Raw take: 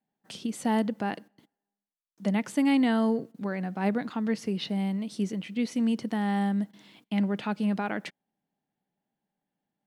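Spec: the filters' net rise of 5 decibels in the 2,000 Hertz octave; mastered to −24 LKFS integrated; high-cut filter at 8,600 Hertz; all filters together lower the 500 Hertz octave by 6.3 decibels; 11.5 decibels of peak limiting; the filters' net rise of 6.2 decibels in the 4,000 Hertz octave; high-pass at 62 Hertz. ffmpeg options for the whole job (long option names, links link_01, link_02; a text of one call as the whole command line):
ffmpeg -i in.wav -af "highpass=62,lowpass=8600,equalizer=frequency=500:width_type=o:gain=-8.5,equalizer=frequency=2000:width_type=o:gain=5,equalizer=frequency=4000:width_type=o:gain=6.5,volume=10.5dB,alimiter=limit=-14.5dB:level=0:latency=1" out.wav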